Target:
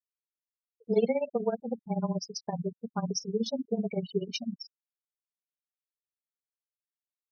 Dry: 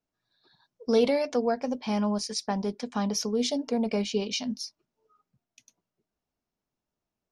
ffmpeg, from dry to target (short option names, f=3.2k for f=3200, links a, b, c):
-af "afreqshift=-21,afftfilt=real='re*gte(hypot(re,im),0.0631)':imag='im*gte(hypot(re,im),0.0631)':win_size=1024:overlap=0.75,tremolo=f=16:d=0.85"